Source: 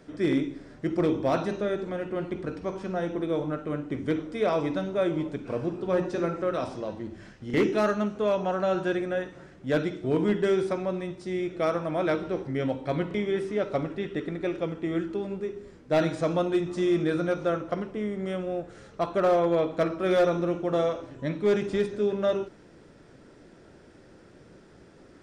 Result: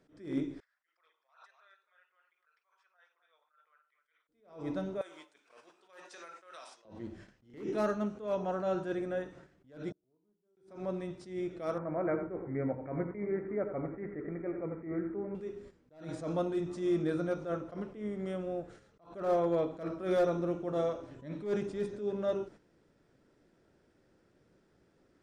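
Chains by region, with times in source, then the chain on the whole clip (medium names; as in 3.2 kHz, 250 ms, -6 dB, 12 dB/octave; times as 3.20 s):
0.60–4.29 s: resonances exaggerated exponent 1.5 + inverse Chebyshev high-pass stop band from 270 Hz, stop band 70 dB + delay 257 ms -12 dB
5.01–6.85 s: high-pass 1.1 kHz + treble shelf 6.4 kHz +11 dB + compression 5:1, threshold -39 dBFS
9.91–10.57 s: inverted gate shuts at -32 dBFS, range -36 dB + Butterworth band-stop 2.4 kHz, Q 0.67
11.78–15.35 s: Chebyshev low-pass 2.3 kHz, order 8 + delay 88 ms -10 dB
whole clip: gate -45 dBFS, range -10 dB; dynamic bell 2.7 kHz, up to -6 dB, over -45 dBFS, Q 0.73; attacks held to a fixed rise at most 130 dB/s; trim -5.5 dB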